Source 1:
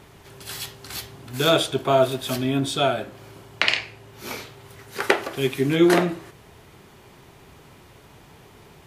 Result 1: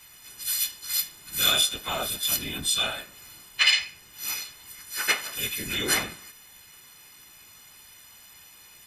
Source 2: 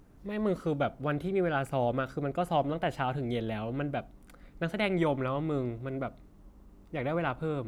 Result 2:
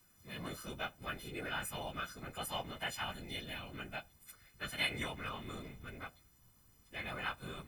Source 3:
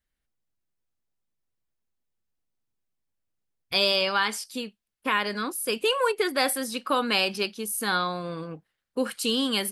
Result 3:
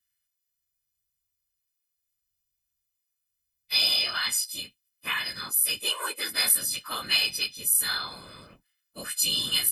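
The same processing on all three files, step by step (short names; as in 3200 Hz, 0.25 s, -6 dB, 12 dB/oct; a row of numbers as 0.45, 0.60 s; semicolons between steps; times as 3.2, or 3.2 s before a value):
frequency quantiser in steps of 3 st; whisperiser; passive tone stack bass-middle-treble 5-5-5; gain +3 dB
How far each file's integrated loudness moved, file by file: -2.0, -10.0, +1.5 LU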